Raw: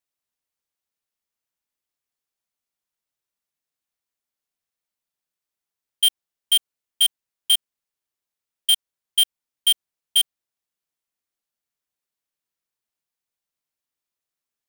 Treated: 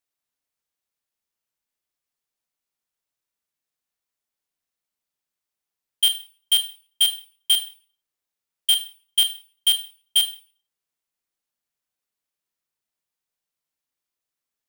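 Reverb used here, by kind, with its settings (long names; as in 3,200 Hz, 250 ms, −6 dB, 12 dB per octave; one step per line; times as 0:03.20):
four-comb reverb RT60 0.41 s, combs from 25 ms, DRR 9 dB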